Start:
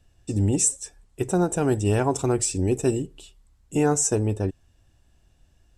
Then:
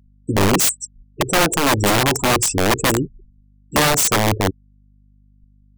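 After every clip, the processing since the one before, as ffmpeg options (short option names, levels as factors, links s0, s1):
-af "afftfilt=real='re*gte(hypot(re,im),0.0316)':imag='im*gte(hypot(re,im),0.0316)':win_size=1024:overlap=0.75,aeval=exprs='(mod(7.5*val(0)+1,2)-1)/7.5':c=same,aeval=exprs='val(0)+0.00112*(sin(2*PI*50*n/s)+sin(2*PI*2*50*n/s)/2+sin(2*PI*3*50*n/s)/3+sin(2*PI*4*50*n/s)/4+sin(2*PI*5*50*n/s)/5)':c=same,volume=2.37"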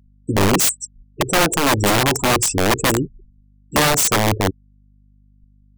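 -af anull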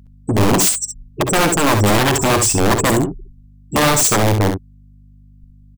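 -filter_complex "[0:a]asoftclip=type=tanh:threshold=0.0891,asplit=2[s0][s1];[s1]aecho=0:1:57|67:0.188|0.422[s2];[s0][s2]amix=inputs=2:normalize=0,volume=2.66"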